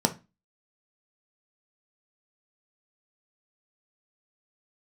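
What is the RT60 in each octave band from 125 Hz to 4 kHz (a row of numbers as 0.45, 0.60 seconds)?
0.35, 0.40, 0.25, 0.25, 0.25, 0.25 seconds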